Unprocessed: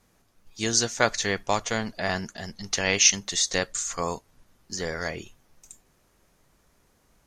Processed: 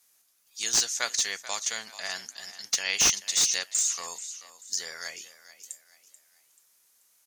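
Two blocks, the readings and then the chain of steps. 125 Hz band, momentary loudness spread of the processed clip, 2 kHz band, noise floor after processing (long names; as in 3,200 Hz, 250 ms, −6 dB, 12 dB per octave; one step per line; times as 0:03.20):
−19.0 dB, 21 LU, −5.0 dB, −66 dBFS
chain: first difference
on a send: echo with shifted repeats 435 ms, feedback 38%, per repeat +37 Hz, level −15 dB
on the sum: slew-rate limiting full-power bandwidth 340 Hz
level +6 dB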